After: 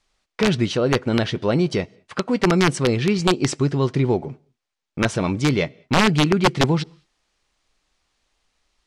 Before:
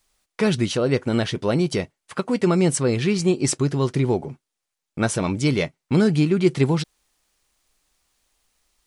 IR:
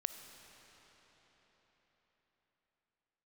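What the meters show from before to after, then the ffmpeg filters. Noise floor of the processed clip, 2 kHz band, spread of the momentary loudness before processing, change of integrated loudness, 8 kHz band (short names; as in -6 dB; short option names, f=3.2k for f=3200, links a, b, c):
-82 dBFS, +5.5 dB, 8 LU, +1.0 dB, -3.0 dB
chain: -filter_complex "[0:a]asplit=2[a][b];[1:a]atrim=start_sample=2205,afade=t=out:st=0.27:d=0.01,atrim=end_sample=12348[c];[b][c]afir=irnorm=-1:irlink=0,volume=-14dB[d];[a][d]amix=inputs=2:normalize=0,aeval=exprs='(mod(2.51*val(0)+1,2)-1)/2.51':c=same,lowpass=5.3k"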